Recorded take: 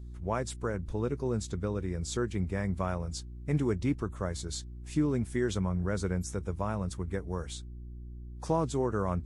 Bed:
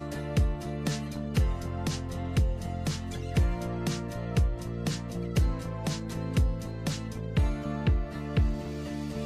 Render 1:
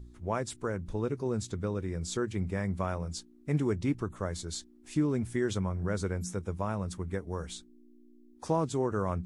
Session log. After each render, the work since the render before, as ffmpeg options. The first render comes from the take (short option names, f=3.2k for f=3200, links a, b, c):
-af "bandreject=f=60:t=h:w=4,bandreject=f=120:t=h:w=4,bandreject=f=180:t=h:w=4"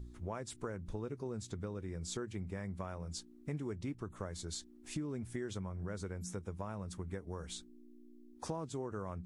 -af "acompressor=threshold=-39dB:ratio=4"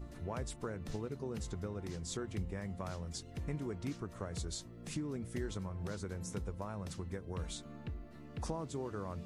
-filter_complex "[1:a]volume=-18dB[a];[0:a][a]amix=inputs=2:normalize=0"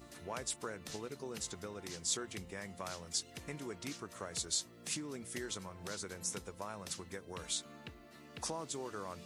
-af "highpass=f=380:p=1,highshelf=f=2.2k:g=10.5"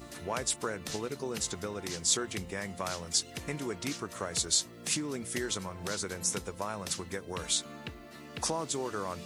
-af "volume=8dB"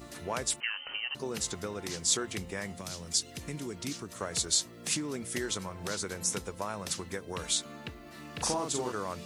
-filter_complex "[0:a]asettb=1/sr,asplit=3[a][b][c];[a]atrim=end=0.604[d];[b]atrim=start=0.6:end=1.15,asetpts=PTS-STARTPTS,afade=t=in:d=0.004:c=qsin,afade=t=out:st=0.546:d=0.004:c=qsin,lowpass=f=2.7k:t=q:w=0.5098,lowpass=f=2.7k:t=q:w=0.6013,lowpass=f=2.7k:t=q:w=0.9,lowpass=f=2.7k:t=q:w=2.563,afreqshift=-3200[e];[c]atrim=start=1.146[f];[d][e]acrossfade=d=0.004:c1=hsin:c2=qsin[g];[g][f]acrossfade=d=0.004:c1=qsin:c2=hsin,asettb=1/sr,asplit=3[h][i][j];[h]atrim=end=2.724[k];[i]atrim=start=2.72:end=4.21,asetpts=PTS-STARTPTS,afade=t=in:d=0.004:c=qsin,afade=t=out:st=1.486:d=0.004:c=qsin,acrossover=split=370|3000[l][m][n];[m]acompressor=threshold=-50dB:ratio=2.5:attack=3.2:release=140:knee=2.83:detection=peak[o];[l][o][n]amix=inputs=3:normalize=0[p];[j]atrim=start=4.206[q];[k][p]acrossfade=d=0.004:c1=hsin:c2=qsin[r];[r][q]acrossfade=d=0.004:c1=qsin:c2=hsin,asettb=1/sr,asplit=3[s][t][u];[s]atrim=end=8.024[v];[t]atrim=start=8.02:end=8.92,asetpts=PTS-STARTPTS,afade=t=in:d=0.004:c=qsin,afade=t=out:st=0.896:d=0.004:c=qsin,asplit=2[w][x];[x]adelay=40,volume=-3dB[y];[w][y]amix=inputs=2:normalize=0,atrim=end_sample=39690[z];[u]atrim=start=8.916[aa];[v][z]acrossfade=d=0.004:c1=hsin:c2=qsin[ab];[ab][aa]acrossfade=d=0.004:c1=qsin:c2=hsin"